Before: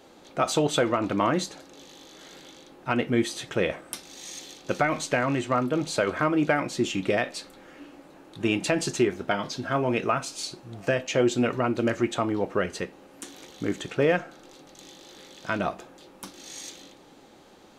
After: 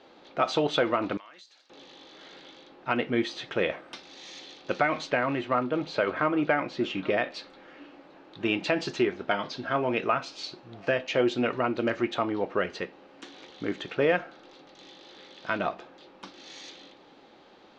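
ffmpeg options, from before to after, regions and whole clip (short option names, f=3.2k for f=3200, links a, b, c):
-filter_complex "[0:a]asettb=1/sr,asplit=3[a][b][c];[a]atrim=end=1.174[d];[b]atrim=start=1.17:end=1.7,asetpts=PTS-STARTPTS,afade=t=in:d=0.004:c=qsin,afade=t=out:st=0.526:d=0.004:c=qsin,aderivative,acompressor=threshold=-47dB:ratio=3:attack=3.2:release=140:knee=1:detection=peak[e];[c]atrim=start=1.696[f];[d][e]acrossfade=d=0.004:c1=hsin:c2=qsin[g];[g][f]acrossfade=d=0.004:c1=qsin:c2=hsin,asettb=1/sr,asplit=3[h][i][j];[h]atrim=end=5.104[k];[i]atrim=start=5.1:end=7.31,asetpts=PTS-STARTPTS,afade=t=in:d=0.004:c=qsin,afade=t=out:st=2.206:d=0.004:c=qsin,lowpass=f=3.6k:p=1,aecho=1:1:821:0.0794,atrim=end_sample=97461[l];[j]atrim=start=7.306[m];[k][l]acrossfade=d=0.004:c1=hsin:c2=qsin[n];[n][m]acrossfade=d=0.004:c1=qsin:c2=hsin,lowpass=f=4.6k:w=0.5412,lowpass=f=4.6k:w=1.3066,lowshelf=f=190:g=-10.5"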